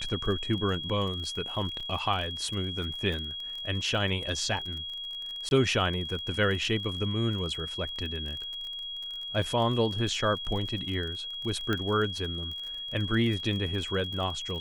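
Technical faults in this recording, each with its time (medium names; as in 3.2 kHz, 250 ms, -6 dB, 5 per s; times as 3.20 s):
crackle 34 per s -35 dBFS
whine 3.3 kHz -35 dBFS
1.80 s: dropout 3.9 ms
5.49–5.51 s: dropout 21 ms
9.42 s: dropout 2.3 ms
11.73 s: pop -16 dBFS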